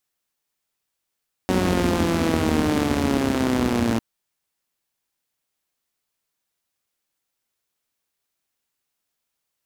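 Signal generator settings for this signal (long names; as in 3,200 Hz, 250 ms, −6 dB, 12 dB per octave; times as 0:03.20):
pulse-train model of a four-cylinder engine, changing speed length 2.50 s, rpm 5,600, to 3,400, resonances 87/230 Hz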